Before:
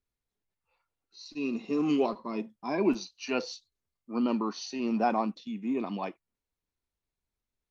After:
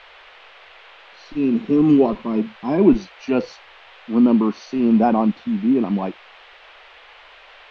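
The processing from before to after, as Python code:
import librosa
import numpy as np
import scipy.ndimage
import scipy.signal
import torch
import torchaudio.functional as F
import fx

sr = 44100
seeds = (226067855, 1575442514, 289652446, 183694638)

y = fx.tilt_eq(x, sr, slope=-4.0)
y = fx.dmg_noise_band(y, sr, seeds[0], low_hz=460.0, high_hz=3200.0, level_db=-52.0)
y = y * librosa.db_to_amplitude(6.0)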